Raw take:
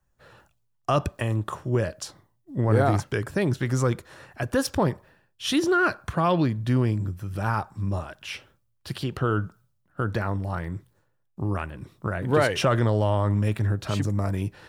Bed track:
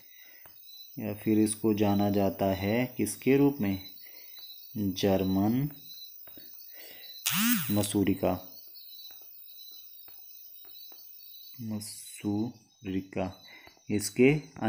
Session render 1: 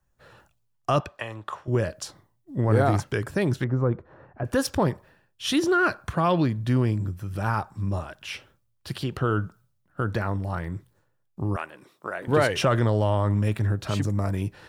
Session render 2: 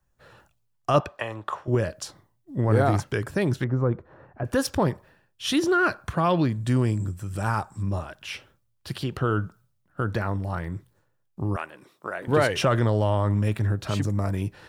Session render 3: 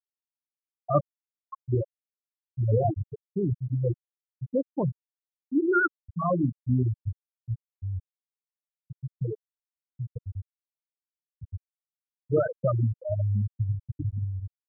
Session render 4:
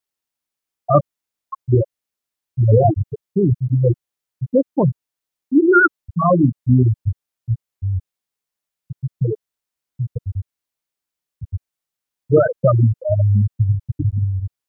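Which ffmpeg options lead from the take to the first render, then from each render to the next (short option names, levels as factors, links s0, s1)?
-filter_complex "[0:a]asettb=1/sr,asplit=3[s0][s1][s2];[s0]atrim=end=1.004[s3];[s1]atrim=start=1:end=1.68,asetpts=PTS-STARTPTS,afade=t=in:d=0.004:c=qsin,afade=t=out:st=0.676:d=0.004:c=qsin,acrossover=split=530 5200:gain=0.178 1 0.224[s4][s5][s6];[s4][s5][s6]amix=inputs=3:normalize=0[s7];[s2]atrim=start=1.676[s8];[s3][s7]acrossfade=d=0.004:c1=hsin:c2=qsin[s9];[s9][s8]acrossfade=d=0.004:c1=qsin:c2=hsin,asettb=1/sr,asplit=3[s10][s11][s12];[s10]atrim=end=3.644[s13];[s11]atrim=start=3.64:end=4.45,asetpts=PTS-STARTPTS,afade=t=in:d=0.004:c=qsin,afade=t=out:st=0.806:d=0.004:c=qsin,lowpass=1000[s14];[s12]atrim=start=4.446[s15];[s13][s14]acrossfade=d=0.004:c1=hsin:c2=qsin[s16];[s16][s15]acrossfade=d=0.004:c1=qsin:c2=hsin,asettb=1/sr,asplit=3[s17][s18][s19];[s17]atrim=end=11.564[s20];[s18]atrim=start=11.56:end=12.28,asetpts=PTS-STARTPTS,afade=t=in:d=0.004:c=qsin,afade=t=out:st=0.716:d=0.004:c=qsin,highpass=420[s21];[s19]atrim=start=12.276[s22];[s20][s21]acrossfade=d=0.004:c1=hsin:c2=qsin[s23];[s23][s22]acrossfade=d=0.004:c1=qsin:c2=hsin"
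-filter_complex "[0:a]asettb=1/sr,asplit=3[s0][s1][s2];[s0]atrim=end=0.944[s3];[s1]atrim=start=0.94:end=1.75,asetpts=PTS-STARTPTS,afade=t=in:d=0.004:c=qsin,afade=t=out:st=0.806:d=0.004:c=qsin,equalizer=f=660:w=0.45:g=4.5[s4];[s2]atrim=start=1.746[s5];[s3][s4]acrossfade=d=0.004:c1=hsin:c2=qsin[s6];[s6][s5]acrossfade=d=0.004:c1=qsin:c2=hsin,asettb=1/sr,asplit=3[s7][s8][s9];[s7]atrim=end=6.524[s10];[s8]atrim=start=6.52:end=7.83,asetpts=PTS-STARTPTS,afade=t=in:d=0.004:c=qsin,afade=t=out:st=1.306:d=0.004:c=qsin,equalizer=f=7900:w=2.6:g=14[s11];[s9]atrim=start=7.826[s12];[s10][s11]acrossfade=d=0.004:c1=hsin:c2=qsin[s13];[s13][s12]acrossfade=d=0.004:c1=qsin:c2=hsin"
-af "bandreject=f=52.64:t=h:w=4,bandreject=f=105.28:t=h:w=4,bandreject=f=157.92:t=h:w=4,bandreject=f=210.56:t=h:w=4,bandreject=f=263.2:t=h:w=4,bandreject=f=315.84:t=h:w=4,bandreject=f=368.48:t=h:w=4,bandreject=f=421.12:t=h:w=4,bandreject=f=473.76:t=h:w=4,bandreject=f=526.4:t=h:w=4,bandreject=f=579.04:t=h:w=4,bandreject=f=631.68:t=h:w=4,bandreject=f=684.32:t=h:w=4,bandreject=f=736.96:t=h:w=4,bandreject=f=789.6:t=h:w=4,bandreject=f=842.24:t=h:w=4,bandreject=f=894.88:t=h:w=4,bandreject=f=947.52:t=h:w=4,bandreject=f=1000.16:t=h:w=4,bandreject=f=1052.8:t=h:w=4,bandreject=f=1105.44:t=h:w=4,bandreject=f=1158.08:t=h:w=4,bandreject=f=1210.72:t=h:w=4,bandreject=f=1263.36:t=h:w=4,bandreject=f=1316:t=h:w=4,bandreject=f=1368.64:t=h:w=4,afftfilt=real='re*gte(hypot(re,im),0.447)':imag='im*gte(hypot(re,im),0.447)':win_size=1024:overlap=0.75"
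-af "volume=3.55,alimiter=limit=0.794:level=0:latency=1"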